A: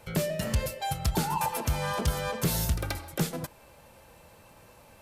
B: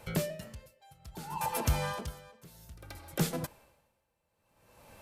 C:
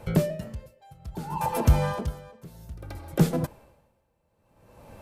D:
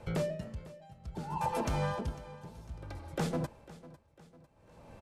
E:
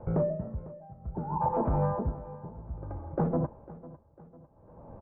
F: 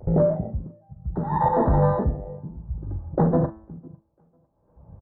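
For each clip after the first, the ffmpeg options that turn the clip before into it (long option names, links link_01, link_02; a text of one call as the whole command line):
ffmpeg -i in.wav -af "aeval=exprs='val(0)*pow(10,-27*(0.5-0.5*cos(2*PI*0.6*n/s))/20)':channel_layout=same" out.wav
ffmpeg -i in.wav -af "tiltshelf=frequency=1100:gain=6,volume=4.5dB" out.wav
ffmpeg -i in.wav -filter_complex "[0:a]lowpass=8000,acrossover=split=580[link_01][link_02];[link_01]asoftclip=type=hard:threshold=-25.5dB[link_03];[link_03][link_02]amix=inputs=2:normalize=0,aecho=1:1:500|1000|1500|2000:0.119|0.0559|0.0263|0.0123,volume=-5dB" out.wav
ffmpeg -i in.wav -af "lowpass=frequency=1100:width=0.5412,lowpass=frequency=1100:width=1.3066,volume=5.5dB" out.wav
ffmpeg -i in.wav -filter_complex "[0:a]afwtdn=0.02,asplit=2[link_01][link_02];[link_02]adelay=42,volume=-13dB[link_03];[link_01][link_03]amix=inputs=2:normalize=0,bandreject=frequency=109.3:width_type=h:width=4,bandreject=frequency=218.6:width_type=h:width=4,bandreject=frequency=327.9:width_type=h:width=4,bandreject=frequency=437.2:width_type=h:width=4,bandreject=frequency=546.5:width_type=h:width=4,bandreject=frequency=655.8:width_type=h:width=4,bandreject=frequency=765.1:width_type=h:width=4,bandreject=frequency=874.4:width_type=h:width=4,bandreject=frequency=983.7:width_type=h:width=4,bandreject=frequency=1093:width_type=h:width=4,bandreject=frequency=1202.3:width_type=h:width=4,bandreject=frequency=1311.6:width_type=h:width=4,bandreject=frequency=1420.9:width_type=h:width=4,bandreject=frequency=1530.2:width_type=h:width=4,bandreject=frequency=1639.5:width_type=h:width=4,bandreject=frequency=1748.8:width_type=h:width=4,bandreject=frequency=1858.1:width_type=h:width=4,bandreject=frequency=1967.4:width_type=h:width=4,bandreject=frequency=2076.7:width_type=h:width=4,bandreject=frequency=2186:width_type=h:width=4,bandreject=frequency=2295.3:width_type=h:width=4,bandreject=frequency=2404.6:width_type=h:width=4,bandreject=frequency=2513.9:width_type=h:width=4,bandreject=frequency=2623.2:width_type=h:width=4,bandreject=frequency=2732.5:width_type=h:width=4,bandreject=frequency=2841.8:width_type=h:width=4,bandreject=frequency=2951.1:width_type=h:width=4,bandreject=frequency=3060.4:width_type=h:width=4,bandreject=frequency=3169.7:width_type=h:width=4,bandreject=frequency=3279:width_type=h:width=4,bandreject=frequency=3388.3:width_type=h:width=4,bandreject=frequency=3497.6:width_type=h:width=4,bandreject=frequency=3606.9:width_type=h:width=4,bandreject=frequency=3716.2:width_type=h:width=4,volume=8dB" out.wav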